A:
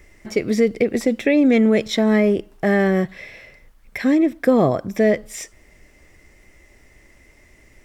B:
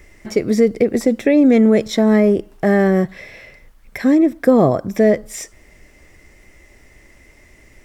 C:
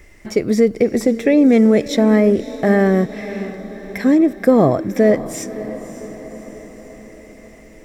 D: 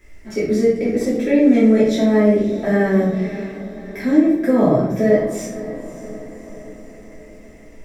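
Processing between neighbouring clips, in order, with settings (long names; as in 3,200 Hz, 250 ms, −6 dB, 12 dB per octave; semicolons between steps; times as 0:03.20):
dynamic equaliser 2,800 Hz, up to −8 dB, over −42 dBFS, Q 1.1; level +3.5 dB
feedback delay with all-pass diffusion 574 ms, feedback 58%, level −14.5 dB
rectangular room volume 200 cubic metres, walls mixed, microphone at 2.9 metres; level −12 dB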